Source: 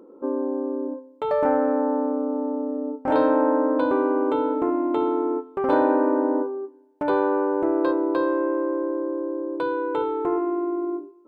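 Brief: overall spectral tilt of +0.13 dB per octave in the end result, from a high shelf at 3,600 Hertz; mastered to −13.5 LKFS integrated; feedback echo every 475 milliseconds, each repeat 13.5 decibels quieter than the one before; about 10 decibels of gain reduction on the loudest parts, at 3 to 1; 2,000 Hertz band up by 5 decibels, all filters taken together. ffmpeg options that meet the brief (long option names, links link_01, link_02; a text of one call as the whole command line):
ffmpeg -i in.wav -af "equalizer=frequency=2000:width_type=o:gain=9,highshelf=frequency=3600:gain=-5,acompressor=threshold=-29dB:ratio=3,aecho=1:1:475|950:0.211|0.0444,volume=17dB" out.wav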